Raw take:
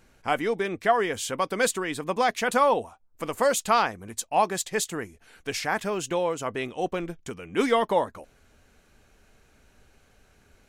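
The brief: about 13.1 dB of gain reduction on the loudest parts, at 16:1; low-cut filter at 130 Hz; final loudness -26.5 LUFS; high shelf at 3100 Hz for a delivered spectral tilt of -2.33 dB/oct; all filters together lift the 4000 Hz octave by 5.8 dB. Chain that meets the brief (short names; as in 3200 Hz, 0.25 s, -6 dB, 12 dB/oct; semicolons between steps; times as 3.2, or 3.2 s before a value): HPF 130 Hz; high shelf 3100 Hz +6 dB; bell 4000 Hz +3 dB; compressor 16:1, threshold -29 dBFS; gain +7.5 dB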